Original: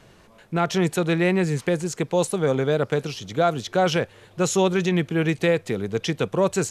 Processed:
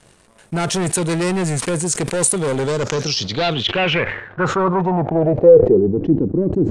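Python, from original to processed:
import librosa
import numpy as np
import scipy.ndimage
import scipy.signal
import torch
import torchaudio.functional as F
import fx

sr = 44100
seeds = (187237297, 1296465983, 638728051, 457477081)

y = fx.leveller(x, sr, passes=2)
y = np.clip(10.0 ** (15.5 / 20.0) * y, -1.0, 1.0) / 10.0 ** (15.5 / 20.0)
y = fx.filter_sweep_lowpass(y, sr, from_hz=9100.0, to_hz=300.0, start_s=2.58, end_s=6.02, q=5.4)
y = fx.sustainer(y, sr, db_per_s=75.0)
y = F.gain(torch.from_numpy(y), -1.5).numpy()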